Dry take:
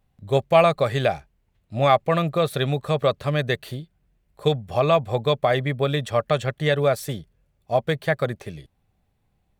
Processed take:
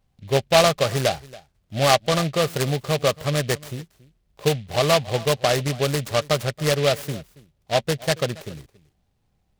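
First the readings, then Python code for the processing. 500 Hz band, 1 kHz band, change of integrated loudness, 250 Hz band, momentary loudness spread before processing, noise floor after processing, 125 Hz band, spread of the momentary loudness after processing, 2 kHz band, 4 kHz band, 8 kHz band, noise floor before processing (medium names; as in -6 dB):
-0.5 dB, -1.0 dB, +0.5 dB, 0.0 dB, 11 LU, -69 dBFS, 0.0 dB, 11 LU, +1.5 dB, +6.0 dB, +14.5 dB, -69 dBFS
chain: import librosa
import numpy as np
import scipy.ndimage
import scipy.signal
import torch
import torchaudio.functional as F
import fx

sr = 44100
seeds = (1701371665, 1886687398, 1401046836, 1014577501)

p1 = x + fx.echo_single(x, sr, ms=278, db=-21.0, dry=0)
y = fx.noise_mod_delay(p1, sr, seeds[0], noise_hz=2800.0, depth_ms=0.1)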